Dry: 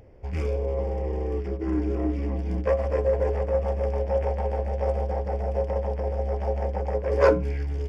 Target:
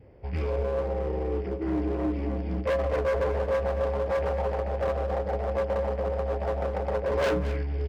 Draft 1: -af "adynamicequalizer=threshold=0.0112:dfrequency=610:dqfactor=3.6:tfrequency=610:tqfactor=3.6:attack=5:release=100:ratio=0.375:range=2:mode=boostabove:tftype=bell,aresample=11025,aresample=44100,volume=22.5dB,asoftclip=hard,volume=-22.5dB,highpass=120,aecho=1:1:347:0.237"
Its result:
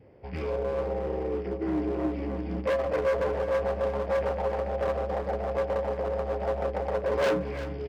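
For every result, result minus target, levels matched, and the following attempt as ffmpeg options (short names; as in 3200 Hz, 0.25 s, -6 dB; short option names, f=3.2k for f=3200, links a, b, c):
echo 0.123 s late; 125 Hz band -4.5 dB
-af "adynamicequalizer=threshold=0.0112:dfrequency=610:dqfactor=3.6:tfrequency=610:tqfactor=3.6:attack=5:release=100:ratio=0.375:range=2:mode=boostabove:tftype=bell,aresample=11025,aresample=44100,volume=22.5dB,asoftclip=hard,volume=-22.5dB,highpass=120,aecho=1:1:224:0.237"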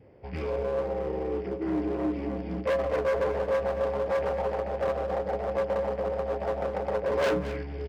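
125 Hz band -6.5 dB
-af "adynamicequalizer=threshold=0.0112:dfrequency=610:dqfactor=3.6:tfrequency=610:tqfactor=3.6:attack=5:release=100:ratio=0.375:range=2:mode=boostabove:tftype=bell,aresample=11025,aresample=44100,volume=22.5dB,asoftclip=hard,volume=-22.5dB,highpass=54,aecho=1:1:224:0.237"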